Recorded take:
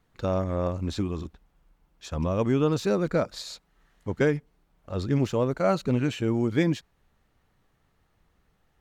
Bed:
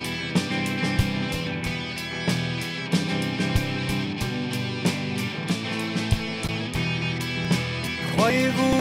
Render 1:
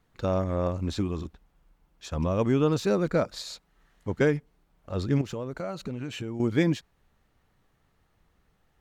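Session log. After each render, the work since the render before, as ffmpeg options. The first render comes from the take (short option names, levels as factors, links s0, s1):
-filter_complex "[0:a]asettb=1/sr,asplit=3[s0][s1][s2];[s0]atrim=end=5.214[s3];[s1]atrim=start=5.21:end=6.4,asetpts=PTS-STARTPTS,afade=t=in:d=0.004:c=qsin,afade=t=out:st=1.186:d=0.004:c=qsin,acompressor=threshold=0.0316:ratio=6:attack=3.2:release=140:knee=1:detection=peak[s4];[s2]atrim=start=6.396[s5];[s3][s4]acrossfade=d=0.004:c1=hsin:c2=qsin[s6];[s6][s5]acrossfade=d=0.004:c1=qsin:c2=hsin"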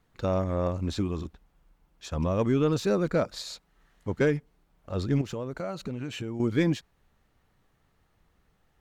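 -af "asoftclip=type=tanh:threshold=0.237"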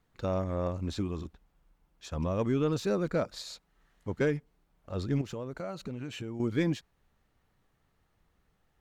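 -af "volume=0.631"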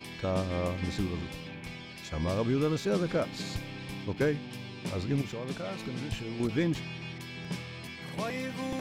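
-filter_complex "[1:a]volume=0.2[s0];[0:a][s0]amix=inputs=2:normalize=0"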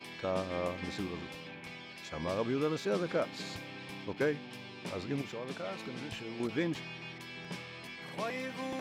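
-af "highpass=f=390:p=1,highshelf=f=4400:g=-7"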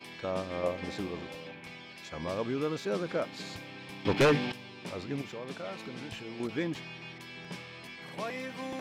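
-filter_complex "[0:a]asettb=1/sr,asplit=3[s0][s1][s2];[s0]atrim=end=0.634[s3];[s1]atrim=start=0.63:end=1.52,asetpts=PTS-STARTPTS,afade=t=in:d=0.004:c=qsin,afade=t=out:st=0.886:d=0.004:c=qsin,equalizer=f=550:w=1.5:g=6.5[s4];[s2]atrim=start=1.516[s5];[s3][s4]acrossfade=d=0.004:c1=hsin:c2=qsin[s6];[s6][s5]acrossfade=d=0.004:c1=qsin:c2=hsin,asettb=1/sr,asplit=3[s7][s8][s9];[s7]atrim=end=4.054[s10];[s8]atrim=start=4.05:end=4.52,asetpts=PTS-STARTPTS,afade=t=in:d=0.004:c=qsin,afade=t=out:st=0.466:d=0.004:c=qsin,aeval=exprs='0.119*sin(PI/2*3.16*val(0)/0.119)':c=same[s11];[s9]atrim=start=4.516[s12];[s10][s11]acrossfade=d=0.004:c1=hsin:c2=qsin[s13];[s13][s12]acrossfade=d=0.004:c1=qsin:c2=hsin"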